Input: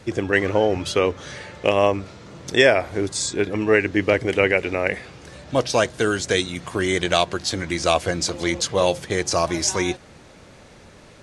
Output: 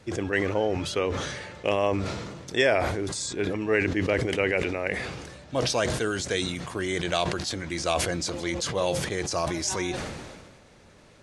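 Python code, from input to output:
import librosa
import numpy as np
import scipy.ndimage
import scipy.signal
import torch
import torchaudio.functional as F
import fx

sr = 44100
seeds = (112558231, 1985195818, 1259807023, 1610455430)

y = fx.sustainer(x, sr, db_per_s=36.0)
y = y * 10.0 ** (-7.5 / 20.0)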